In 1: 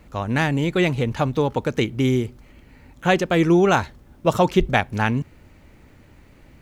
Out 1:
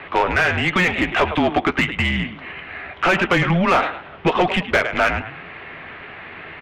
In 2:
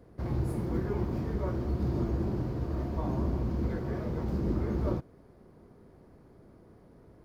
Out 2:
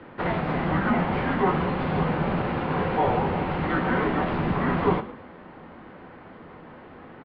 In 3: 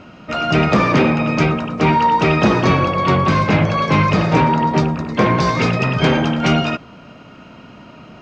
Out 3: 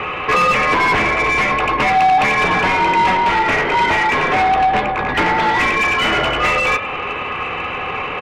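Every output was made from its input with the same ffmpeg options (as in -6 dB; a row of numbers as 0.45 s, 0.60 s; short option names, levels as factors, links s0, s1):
-filter_complex "[0:a]equalizer=f=170:t=o:w=2.5:g=3,acompressor=threshold=0.0631:ratio=6,crystalizer=i=7:c=0,highpass=f=210:t=q:w=0.5412,highpass=f=210:t=q:w=1.307,lowpass=f=3200:t=q:w=0.5176,lowpass=f=3200:t=q:w=0.7071,lowpass=f=3200:t=q:w=1.932,afreqshift=-180,asplit=2[s0][s1];[s1]adelay=12,volume=0.266[s2];[s0][s2]amix=inputs=2:normalize=0,asplit=2[s3][s4];[s4]asplit=3[s5][s6][s7];[s5]adelay=106,afreqshift=40,volume=0.158[s8];[s6]adelay=212,afreqshift=80,volume=0.0507[s9];[s7]adelay=318,afreqshift=120,volume=0.0162[s10];[s8][s9][s10]amix=inputs=3:normalize=0[s11];[s3][s11]amix=inputs=2:normalize=0,asplit=2[s12][s13];[s13]highpass=f=720:p=1,volume=12.6,asoftclip=type=tanh:threshold=0.355[s14];[s12][s14]amix=inputs=2:normalize=0,lowpass=f=1900:p=1,volume=0.501,volume=1.5"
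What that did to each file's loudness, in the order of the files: +2.0 LU, +7.5 LU, +0.5 LU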